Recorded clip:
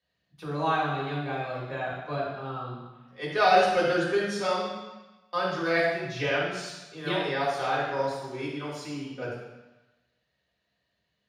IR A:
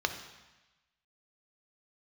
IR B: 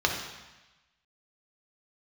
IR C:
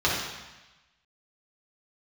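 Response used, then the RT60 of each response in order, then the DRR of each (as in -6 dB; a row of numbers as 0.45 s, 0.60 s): C; 1.1 s, 1.1 s, 1.1 s; 6.0 dB, 0.5 dB, -6.5 dB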